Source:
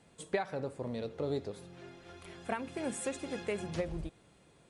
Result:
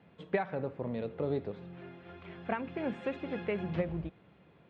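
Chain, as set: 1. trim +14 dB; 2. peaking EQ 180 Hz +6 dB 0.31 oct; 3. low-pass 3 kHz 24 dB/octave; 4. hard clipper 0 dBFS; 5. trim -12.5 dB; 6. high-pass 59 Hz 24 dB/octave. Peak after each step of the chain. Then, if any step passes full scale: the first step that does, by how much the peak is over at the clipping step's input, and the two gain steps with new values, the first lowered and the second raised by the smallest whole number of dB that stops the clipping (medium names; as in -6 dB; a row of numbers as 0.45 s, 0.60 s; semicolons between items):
-5.5 dBFS, -5.5 dBFS, -5.5 dBFS, -5.5 dBFS, -18.0 dBFS, -16.5 dBFS; nothing clips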